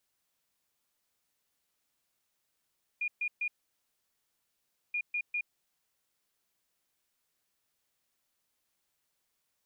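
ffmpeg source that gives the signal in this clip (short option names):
-f lavfi -i "aevalsrc='0.0335*sin(2*PI*2430*t)*clip(min(mod(mod(t,1.93),0.2),0.07-mod(mod(t,1.93),0.2))/0.005,0,1)*lt(mod(t,1.93),0.6)':d=3.86:s=44100"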